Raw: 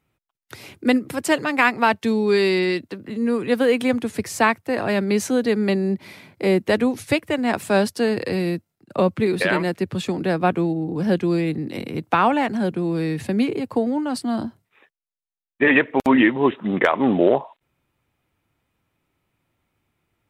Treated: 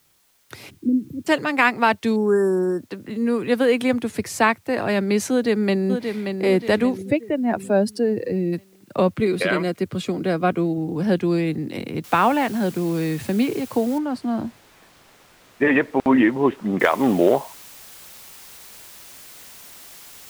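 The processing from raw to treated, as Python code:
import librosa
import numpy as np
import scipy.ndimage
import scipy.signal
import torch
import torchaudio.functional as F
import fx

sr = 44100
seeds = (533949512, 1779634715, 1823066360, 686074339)

y = fx.cheby2_bandstop(x, sr, low_hz=800.0, high_hz=9600.0, order=4, stop_db=50, at=(0.69, 1.26), fade=0.02)
y = fx.brickwall_bandstop(y, sr, low_hz=1800.0, high_hz=5200.0, at=(2.16, 2.83))
y = fx.echo_throw(y, sr, start_s=5.31, length_s=1.12, ms=580, feedback_pct=45, wet_db=-6.5)
y = fx.spec_expand(y, sr, power=1.7, at=(6.96, 8.52), fade=0.02)
y = fx.notch_comb(y, sr, f0_hz=880.0, at=(9.2, 10.78))
y = fx.noise_floor_step(y, sr, seeds[0], at_s=12.04, before_db=-62, after_db=-43, tilt_db=0.0)
y = fx.lowpass(y, sr, hz=1500.0, slope=6, at=(13.98, 16.8))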